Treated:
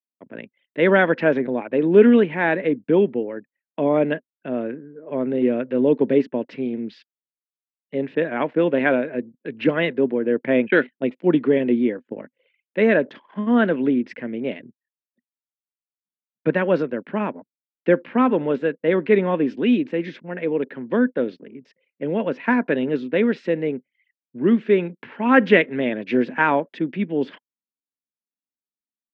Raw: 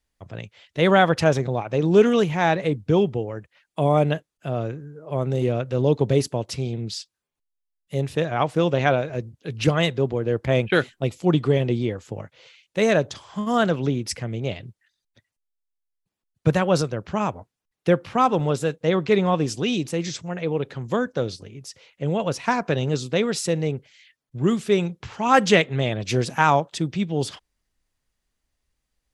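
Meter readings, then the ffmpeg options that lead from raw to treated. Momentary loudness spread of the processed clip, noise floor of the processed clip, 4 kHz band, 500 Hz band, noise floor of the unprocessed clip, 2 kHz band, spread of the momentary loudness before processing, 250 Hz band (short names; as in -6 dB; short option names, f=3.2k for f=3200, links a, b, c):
13 LU, under -85 dBFS, -7.5 dB, +2.5 dB, -83 dBFS, +3.5 dB, 13 LU, +4.5 dB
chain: -af "anlmdn=0.0631,highpass=f=220:w=0.5412,highpass=f=220:w=1.3066,equalizer=f=250:t=q:w=4:g=8,equalizer=f=760:t=q:w=4:g=-9,equalizer=f=1.2k:t=q:w=4:g=-9,equalizer=f=1.7k:t=q:w=4:g=4,lowpass=f=2.5k:w=0.5412,lowpass=f=2.5k:w=1.3066,volume=3dB"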